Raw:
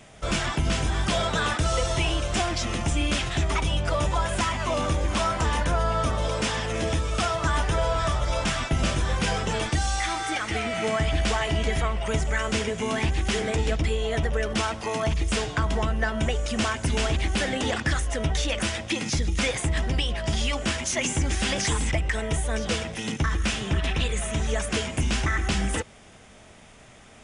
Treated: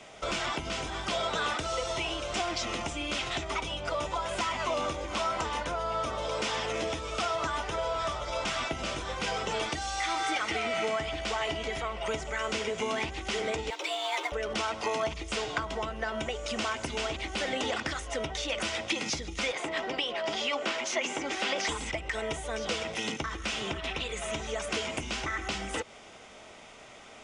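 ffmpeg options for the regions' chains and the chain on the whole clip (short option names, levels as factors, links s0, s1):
-filter_complex "[0:a]asettb=1/sr,asplit=3[s0][s1][s2];[s0]atrim=end=13.704[s3];[s1]atrim=start=13.7:end=14.32,asetpts=PTS-STARTPTS,afade=t=in:d=0.004:c=qsin,afade=t=out:st=0.616:d=0.004:c=qsin,highpass=f=1000:p=1,acrusher=bits=3:mode=log:mix=0:aa=0.000001,afreqshift=250[s4];[s2]atrim=start=14.316[s5];[s3][s4]acrossfade=d=0.004:c1=hsin:c2=qsin[s6];[s6][s5]acrossfade=d=0.004:c1=qsin:c2=hsin,asettb=1/sr,asplit=3[s7][s8][s9];[s7]atrim=end=19.524[s10];[s8]atrim=start=19.52:end=21.69,asetpts=PTS-STARTPTS,afade=t=in:d=0.004:c=qsin,afade=t=out:st=2.166:d=0.004:c=qsin,highpass=280,aemphasis=mode=reproduction:type=50fm[s11];[s9]atrim=start=21.686[s12];[s10][s11]acrossfade=d=0.004:c1=hsin:c2=qsin[s13];[s13][s12]acrossfade=d=0.004:c1=qsin:c2=hsin,bandreject=f=1700:w=8.5,acompressor=threshold=0.0398:ratio=6,acrossover=split=290 7700:gain=0.224 1 0.141[s14][s15][s16];[s14][s15][s16]amix=inputs=3:normalize=0,volume=1.33"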